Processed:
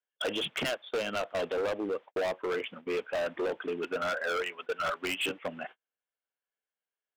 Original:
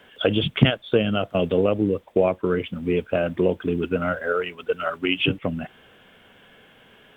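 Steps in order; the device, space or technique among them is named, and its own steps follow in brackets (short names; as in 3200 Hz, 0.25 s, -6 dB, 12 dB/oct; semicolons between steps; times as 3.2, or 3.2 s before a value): walkie-talkie (BPF 570–2700 Hz; hard clip -27.5 dBFS, distortion -6 dB; gate -44 dBFS, range -43 dB)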